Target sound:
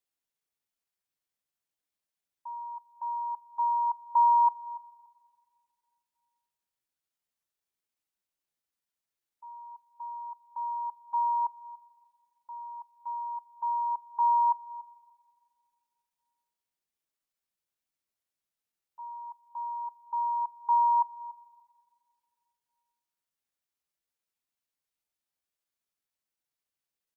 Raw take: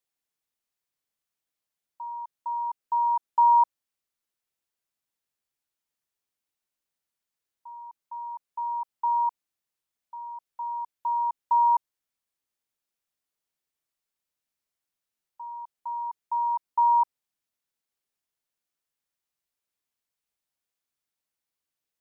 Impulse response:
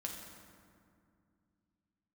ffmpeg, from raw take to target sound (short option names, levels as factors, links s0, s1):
-filter_complex "[0:a]atempo=0.81,asplit=2[s0][s1];[s1]adelay=288,lowpass=f=980:p=1,volume=0.158,asplit=2[s2][s3];[s3]adelay=288,lowpass=f=980:p=1,volume=0.24[s4];[s0][s2][s4]amix=inputs=3:normalize=0,asplit=2[s5][s6];[1:a]atrim=start_sample=2205[s7];[s6][s7]afir=irnorm=-1:irlink=0,volume=0.168[s8];[s5][s8]amix=inputs=2:normalize=0,volume=0.631"